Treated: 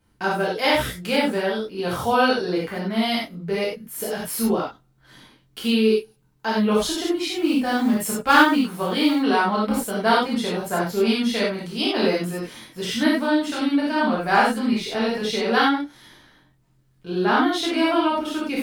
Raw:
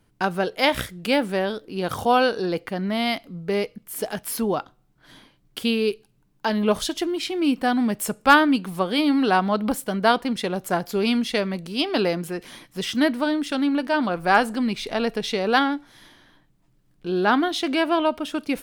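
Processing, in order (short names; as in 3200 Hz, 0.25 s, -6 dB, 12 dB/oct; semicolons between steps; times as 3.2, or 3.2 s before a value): 7.3–9.14 short-mantissa float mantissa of 4-bit; non-linear reverb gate 0.12 s flat, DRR -6.5 dB; gain -6 dB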